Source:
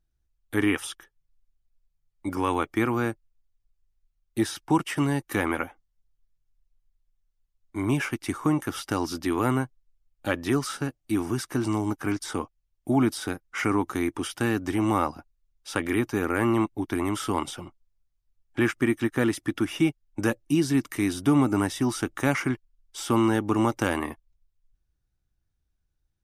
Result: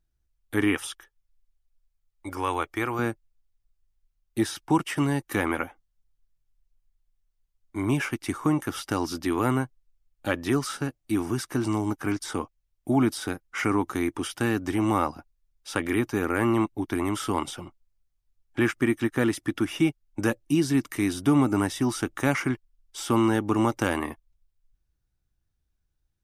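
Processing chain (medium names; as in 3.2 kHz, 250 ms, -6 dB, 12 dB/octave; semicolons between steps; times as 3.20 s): 0.87–2.99 s: peaking EQ 200 Hz -12.5 dB 1.2 oct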